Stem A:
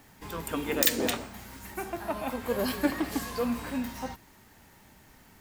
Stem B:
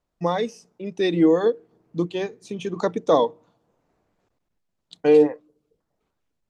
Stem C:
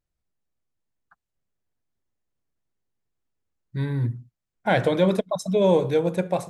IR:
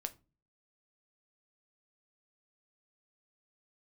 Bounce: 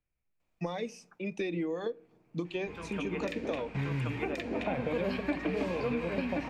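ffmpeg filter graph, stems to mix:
-filter_complex "[0:a]lowpass=3.4k,adelay=2450,volume=0dB,asplit=3[a][b][c];[b]volume=-4dB[d];[c]volume=-3.5dB[e];[1:a]bandreject=f=420:w=12,acompressor=threshold=-25dB:ratio=6,adelay=400,volume=-6.5dB,asplit=2[f][g];[g]volume=-4.5dB[h];[2:a]lowpass=2.3k,acompressor=threshold=-22dB:ratio=6,volume=-5dB,asplit=3[i][j][k];[j]volume=-8.5dB[l];[k]apad=whole_len=346326[m];[a][m]sidechaingate=range=-33dB:threshold=-53dB:ratio=16:detection=peak[n];[3:a]atrim=start_sample=2205[o];[d][h][l]amix=inputs=3:normalize=0[p];[p][o]afir=irnorm=-1:irlink=0[q];[e]aecho=0:1:1077:1[r];[n][f][i][q][r]amix=inputs=5:normalize=0,equalizer=f=2.4k:t=o:w=0.39:g=12.5,acrossover=split=93|710|2200[s][t][u][v];[s]acompressor=threshold=-51dB:ratio=4[w];[t]acompressor=threshold=-31dB:ratio=4[x];[u]acompressor=threshold=-45dB:ratio=4[y];[v]acompressor=threshold=-47dB:ratio=4[z];[w][x][y][z]amix=inputs=4:normalize=0"

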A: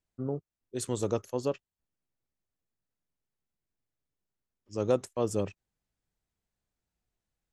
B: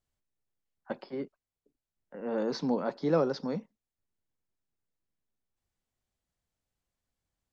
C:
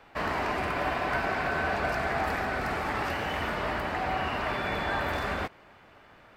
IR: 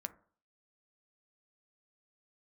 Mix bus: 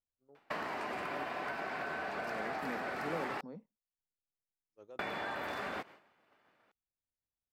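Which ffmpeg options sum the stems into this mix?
-filter_complex "[0:a]bass=f=250:g=-14,treble=f=4k:g=-6,alimiter=limit=-23.5dB:level=0:latency=1:release=22,volume=-15dB[a];[1:a]lowpass=f=1.6k:p=1,volume=-14.5dB[b];[2:a]highpass=190,adelay=350,volume=2dB,asplit=3[c][d][e];[c]atrim=end=3.41,asetpts=PTS-STARTPTS,afade=t=out:st=3.406:d=0.004:c=hsin[f];[d]atrim=start=3.41:end=4.99,asetpts=PTS-STARTPTS,volume=0[g];[e]atrim=start=4.99,asetpts=PTS-STARTPTS,afade=t=in:d=0.004:c=hsin[h];[f][g][h]concat=n=3:v=0:a=1[i];[a][i]amix=inputs=2:normalize=0,agate=range=-33dB:threshold=-41dB:ratio=3:detection=peak,acompressor=threshold=-36dB:ratio=10,volume=0dB[j];[b][j]amix=inputs=2:normalize=0"

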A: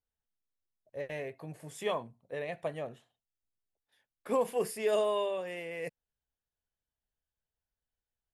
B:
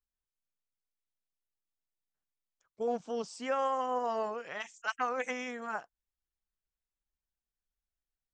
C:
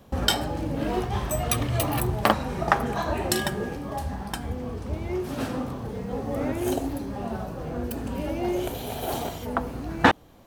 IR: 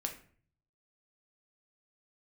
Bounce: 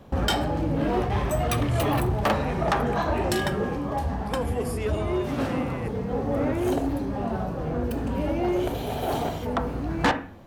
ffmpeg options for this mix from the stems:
-filter_complex "[0:a]volume=3dB[a];[1:a]volume=-9dB,asplit=2[b][c];[2:a]highshelf=f=4.3k:g=-10.5,volume=1dB,asplit=2[d][e];[e]volume=-6dB[f];[c]apad=whole_len=367503[g];[a][g]sidechaincompress=threshold=-42dB:ratio=8:attack=16:release=735[h];[3:a]atrim=start_sample=2205[i];[f][i]afir=irnorm=-1:irlink=0[j];[h][b][d][j]amix=inputs=4:normalize=0,asoftclip=type=tanh:threshold=-16.5dB"

